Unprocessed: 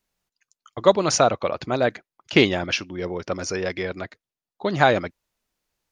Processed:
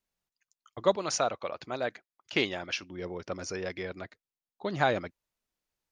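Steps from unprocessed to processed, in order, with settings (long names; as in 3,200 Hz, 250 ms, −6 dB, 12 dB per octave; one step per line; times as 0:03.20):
0:00.96–0:02.83: low-shelf EQ 340 Hz −8.5 dB
level −9 dB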